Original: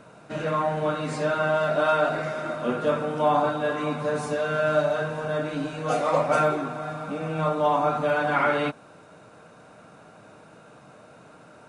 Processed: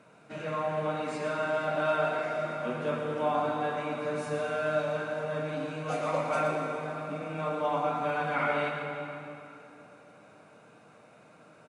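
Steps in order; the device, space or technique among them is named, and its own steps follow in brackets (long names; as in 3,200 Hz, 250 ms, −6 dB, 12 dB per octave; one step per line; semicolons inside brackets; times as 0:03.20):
PA in a hall (high-pass filter 110 Hz; parametric band 2,300 Hz +6 dB 0.38 octaves; single-tap delay 115 ms −8 dB; convolution reverb RT60 3.1 s, pre-delay 120 ms, DRR 4.5 dB)
level −8.5 dB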